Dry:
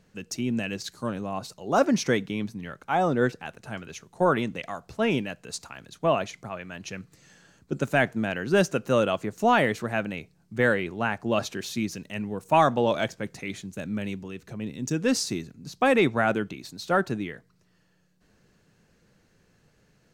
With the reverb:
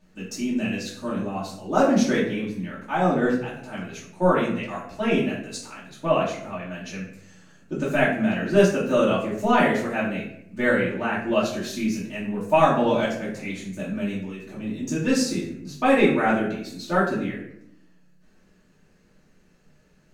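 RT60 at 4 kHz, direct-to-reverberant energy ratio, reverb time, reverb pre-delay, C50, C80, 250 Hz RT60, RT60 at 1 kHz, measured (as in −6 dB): 0.45 s, −8.5 dB, 0.75 s, 3 ms, 4.5 dB, 8.5 dB, 1.1 s, 0.65 s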